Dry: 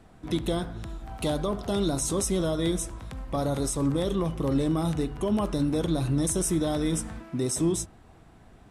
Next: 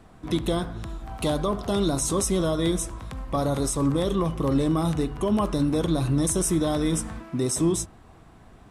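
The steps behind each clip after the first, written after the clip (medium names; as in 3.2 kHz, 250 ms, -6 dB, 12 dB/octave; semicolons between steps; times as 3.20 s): peaking EQ 1.1 kHz +5 dB 0.26 oct; trim +2.5 dB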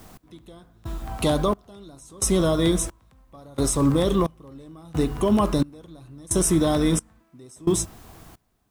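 in parallel at -6 dB: word length cut 8-bit, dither triangular; on the sum: trance gate "x....xxx" 88 bpm -24 dB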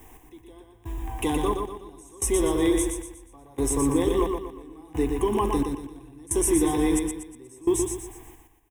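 static phaser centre 900 Hz, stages 8; on a send: feedback delay 120 ms, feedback 40%, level -5 dB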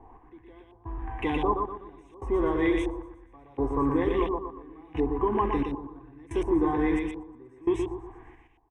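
LFO low-pass saw up 1.4 Hz 830–2800 Hz; trim -3 dB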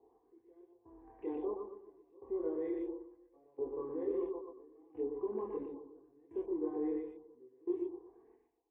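chorus voices 6, 0.25 Hz, delay 26 ms, depth 3.2 ms; band-pass filter 440 Hz, Q 3.8; trim -2.5 dB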